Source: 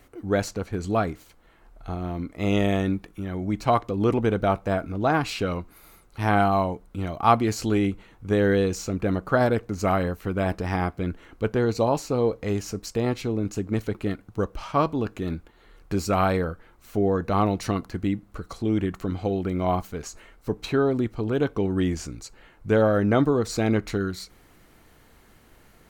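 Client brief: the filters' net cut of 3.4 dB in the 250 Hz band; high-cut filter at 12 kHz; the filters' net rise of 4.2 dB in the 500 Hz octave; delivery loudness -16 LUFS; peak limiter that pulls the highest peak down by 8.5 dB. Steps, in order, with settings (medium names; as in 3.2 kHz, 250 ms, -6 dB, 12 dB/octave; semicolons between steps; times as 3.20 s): low-pass 12 kHz; peaking EQ 250 Hz -7 dB; peaking EQ 500 Hz +7 dB; trim +9 dB; peak limiter -2.5 dBFS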